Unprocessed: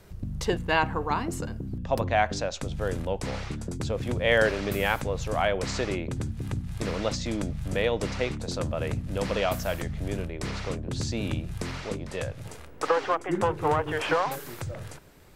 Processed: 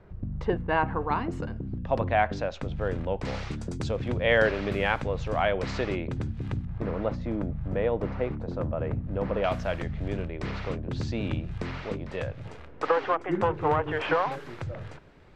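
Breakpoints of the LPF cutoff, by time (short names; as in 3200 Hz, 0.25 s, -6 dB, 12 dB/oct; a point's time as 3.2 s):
1600 Hz
from 0.88 s 2700 Hz
from 3.25 s 6200 Hz
from 3.97 s 3400 Hz
from 6.65 s 1300 Hz
from 9.44 s 3100 Hz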